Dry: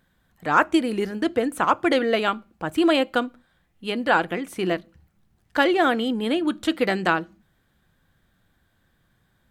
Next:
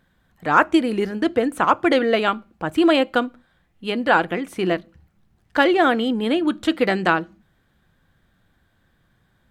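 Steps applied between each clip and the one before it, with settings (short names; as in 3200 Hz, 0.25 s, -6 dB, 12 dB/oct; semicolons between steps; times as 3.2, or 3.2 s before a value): high shelf 6000 Hz -6.5 dB; gain +3 dB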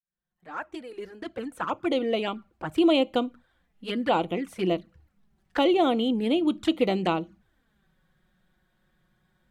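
opening faded in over 3.02 s; envelope flanger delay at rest 5.6 ms, full sweep at -18 dBFS; gain -3 dB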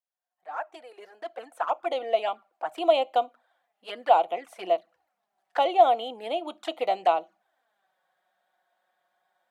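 resonant high-pass 700 Hz, resonance Q 4.9; gain -4.5 dB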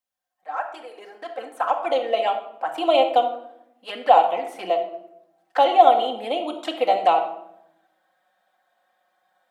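shoebox room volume 2200 m³, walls furnished, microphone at 2.1 m; gain +4 dB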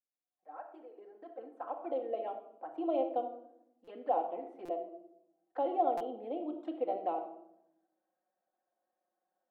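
band-pass 330 Hz, Q 2; stuck buffer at 3.84/4.65/5.97, samples 256, times 5; gain -6 dB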